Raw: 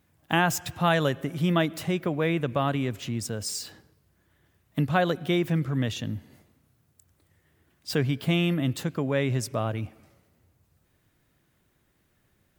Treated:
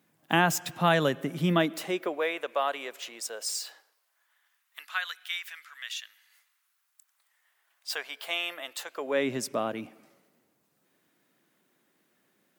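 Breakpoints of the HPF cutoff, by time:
HPF 24 dB/oct
1.52 s 160 Hz
2.31 s 490 Hz
3.46 s 490 Hz
5.13 s 1500 Hz
6.02 s 1500 Hz
8.2 s 630 Hz
8.89 s 630 Hz
9.29 s 200 Hz

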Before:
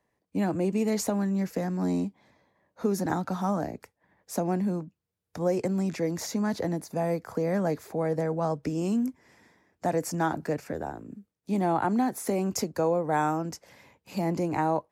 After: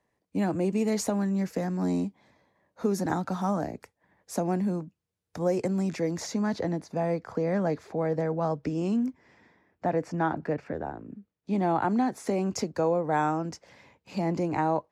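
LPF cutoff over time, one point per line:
5.8 s 11000 Hz
6.78 s 5000 Hz
9.07 s 5000 Hz
9.88 s 2800 Hz
11.09 s 2800 Hz
11.8 s 6200 Hz

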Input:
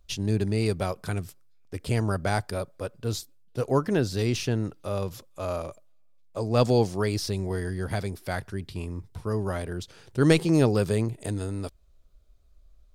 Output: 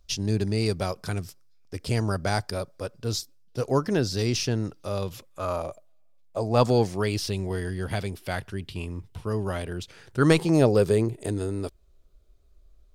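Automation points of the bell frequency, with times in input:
bell +8 dB 0.54 oct
4.91 s 5300 Hz
5.67 s 690 Hz
6.49 s 690 Hz
7.04 s 2900 Hz
9.76 s 2900 Hz
10.91 s 380 Hz

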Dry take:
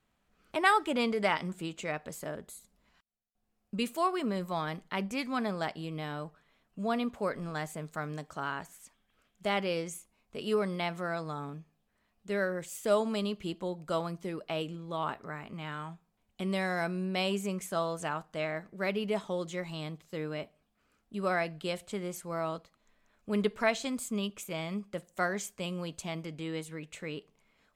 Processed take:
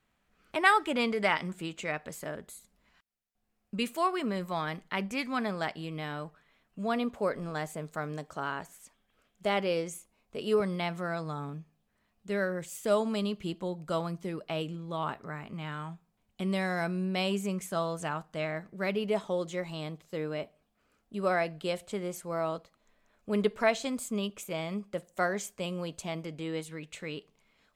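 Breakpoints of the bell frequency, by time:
bell +3.5 dB 1.2 oct
2000 Hz
from 6.96 s 500 Hz
from 10.6 s 140 Hz
from 18.95 s 550 Hz
from 26.6 s 3900 Hz

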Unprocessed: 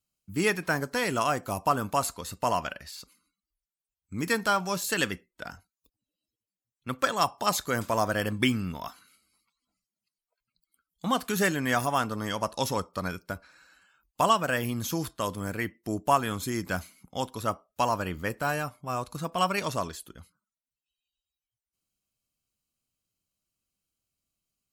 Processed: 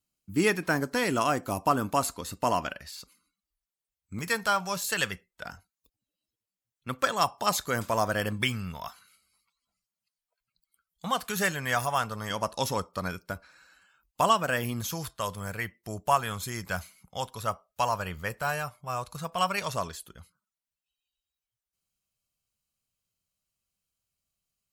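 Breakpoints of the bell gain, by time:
bell 290 Hz 0.73 oct
+4.5 dB
from 2.72 s -2.5 dB
from 4.19 s -14 dB
from 5.43 s -3.5 dB
from 8.42 s -14.5 dB
from 12.3 s -3.5 dB
from 14.81 s -15 dB
from 19.74 s -8 dB

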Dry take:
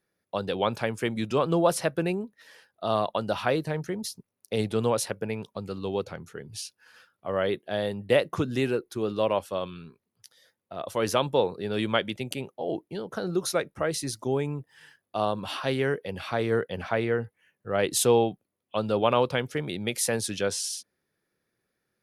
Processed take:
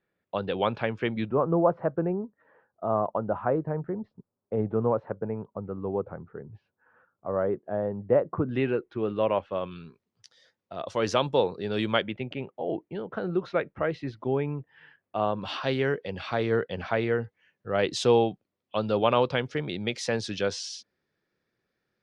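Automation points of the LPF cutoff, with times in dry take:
LPF 24 dB/oct
3400 Hz
from 1.29 s 1300 Hz
from 8.49 s 2800 Hz
from 9.71 s 6300 Hz
from 12.02 s 2800 Hz
from 15.42 s 5500 Hz

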